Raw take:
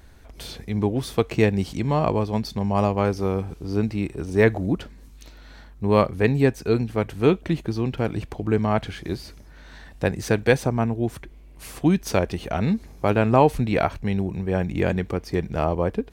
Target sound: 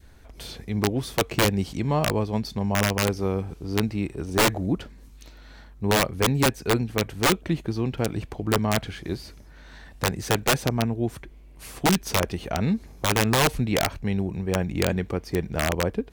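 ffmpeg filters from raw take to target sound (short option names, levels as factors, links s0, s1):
-af "adynamicequalizer=threshold=0.0316:dfrequency=930:dqfactor=1.1:tfrequency=930:tqfactor=1.1:attack=5:release=100:ratio=0.375:range=1.5:mode=cutabove:tftype=bell,aeval=exprs='(mod(3.76*val(0)+1,2)-1)/3.76':c=same,volume=0.841"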